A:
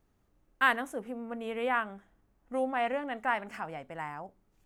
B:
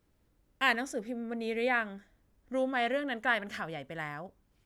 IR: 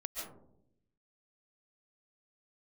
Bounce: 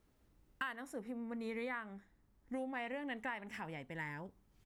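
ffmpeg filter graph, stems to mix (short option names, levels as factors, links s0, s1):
-filter_complex "[0:a]volume=0.501,asplit=2[s0][s1];[1:a]adelay=0.5,volume=0.794[s2];[s1]apad=whole_len=205416[s3];[s2][s3]sidechaincompress=threshold=0.01:ratio=8:attack=16:release=1240[s4];[s0][s4]amix=inputs=2:normalize=0,acompressor=threshold=0.0141:ratio=12"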